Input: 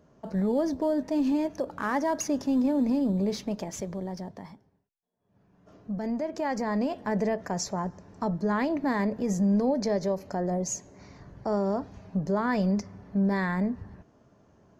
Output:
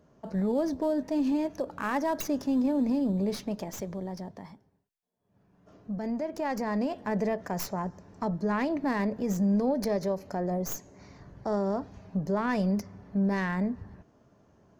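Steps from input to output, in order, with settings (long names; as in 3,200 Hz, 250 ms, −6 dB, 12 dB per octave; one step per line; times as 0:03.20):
stylus tracing distortion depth 0.13 ms
level −1.5 dB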